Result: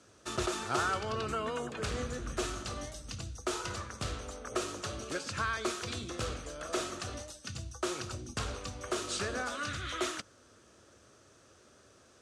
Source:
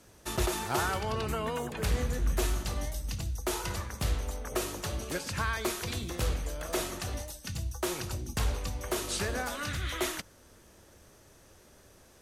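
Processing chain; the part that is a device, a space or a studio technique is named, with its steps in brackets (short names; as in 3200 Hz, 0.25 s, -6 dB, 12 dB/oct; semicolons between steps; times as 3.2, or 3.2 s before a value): car door speaker (speaker cabinet 100–8500 Hz, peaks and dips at 170 Hz -7 dB, 880 Hz -6 dB, 1300 Hz +6 dB, 2000 Hz -4 dB); gain -1.5 dB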